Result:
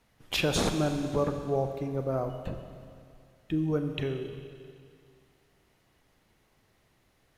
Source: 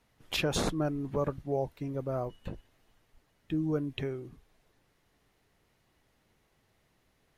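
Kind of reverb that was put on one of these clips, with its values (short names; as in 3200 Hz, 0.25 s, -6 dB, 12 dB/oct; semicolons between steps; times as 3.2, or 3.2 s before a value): Schroeder reverb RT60 2.3 s, combs from 30 ms, DRR 6.5 dB; gain +2.5 dB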